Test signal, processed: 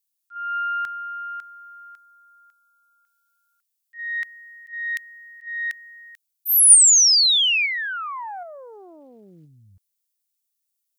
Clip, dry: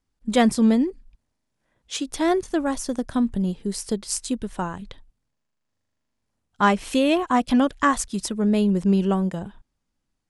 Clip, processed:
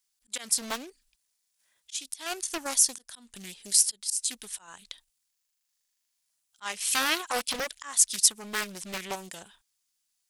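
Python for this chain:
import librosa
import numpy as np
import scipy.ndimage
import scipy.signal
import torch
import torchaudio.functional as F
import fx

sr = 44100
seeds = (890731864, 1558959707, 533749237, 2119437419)

p1 = fx.curve_eq(x, sr, hz=(140.0, 1400.0, 3800.0), db=(0, 6, 9))
p2 = fx.auto_swell(p1, sr, attack_ms=268.0)
p3 = scipy.signal.lfilter([1.0, -0.97], [1.0], p2)
p4 = fx.level_steps(p3, sr, step_db=13)
p5 = p3 + F.gain(torch.from_numpy(p4), -1.0).numpy()
y = fx.doppler_dist(p5, sr, depth_ms=0.9)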